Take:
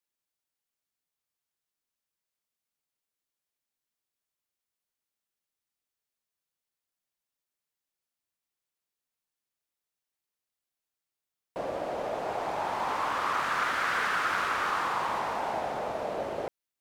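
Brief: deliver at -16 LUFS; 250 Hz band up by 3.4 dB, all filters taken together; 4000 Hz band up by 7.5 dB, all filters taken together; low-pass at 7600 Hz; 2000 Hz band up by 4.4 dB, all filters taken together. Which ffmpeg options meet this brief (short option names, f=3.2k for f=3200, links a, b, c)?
-af "lowpass=7.6k,equalizer=f=250:t=o:g=4.5,equalizer=f=2k:t=o:g=4,equalizer=f=4k:t=o:g=8.5,volume=11.5dB"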